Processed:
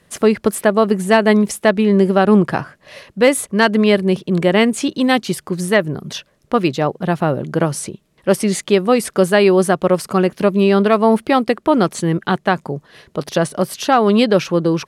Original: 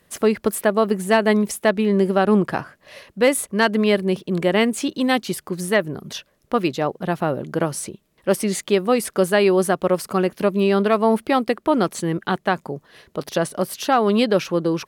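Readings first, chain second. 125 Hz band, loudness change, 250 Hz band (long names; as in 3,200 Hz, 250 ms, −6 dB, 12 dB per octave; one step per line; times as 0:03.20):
+6.5 dB, +4.5 dB, +5.0 dB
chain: low-pass filter 11,000 Hz 12 dB per octave
parametric band 140 Hz +4 dB 0.81 octaves
level +4 dB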